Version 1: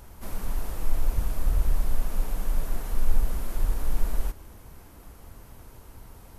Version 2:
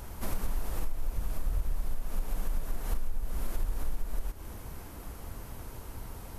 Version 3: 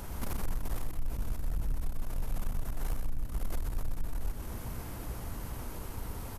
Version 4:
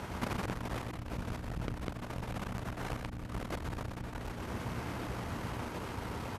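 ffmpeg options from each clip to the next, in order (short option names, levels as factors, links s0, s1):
-af "acompressor=threshold=0.0355:ratio=12,volume=1.68"
-filter_complex "[0:a]asoftclip=type=tanh:threshold=0.0299,aeval=exprs='val(0)+0.00398*(sin(2*PI*60*n/s)+sin(2*PI*2*60*n/s)/2+sin(2*PI*3*60*n/s)/3+sin(2*PI*4*60*n/s)/4+sin(2*PI*5*60*n/s)/5)':c=same,asplit=2[s0][s1];[s1]aecho=0:1:126:0.501[s2];[s0][s2]amix=inputs=2:normalize=0,volume=1.33"
-filter_complex "[0:a]asplit=2[s0][s1];[s1]acrusher=bits=5:dc=4:mix=0:aa=0.000001,volume=0.376[s2];[s0][s2]amix=inputs=2:normalize=0,crystalizer=i=4:c=0,highpass=100,lowpass=2400,volume=1.5"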